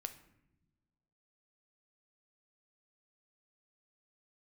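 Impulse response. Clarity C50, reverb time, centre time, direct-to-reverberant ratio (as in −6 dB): 13.0 dB, non-exponential decay, 8 ms, 8.0 dB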